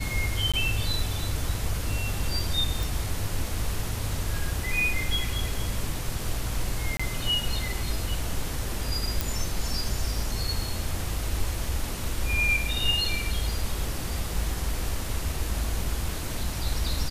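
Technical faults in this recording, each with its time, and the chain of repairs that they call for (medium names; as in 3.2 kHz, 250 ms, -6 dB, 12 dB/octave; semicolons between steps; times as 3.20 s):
0.52–0.54 s: dropout 16 ms
2.83 s: pop
6.97–7.00 s: dropout 25 ms
9.21 s: pop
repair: de-click; interpolate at 0.52 s, 16 ms; interpolate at 6.97 s, 25 ms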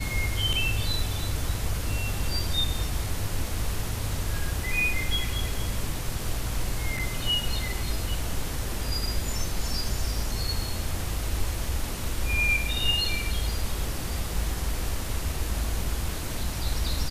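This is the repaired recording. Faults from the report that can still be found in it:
nothing left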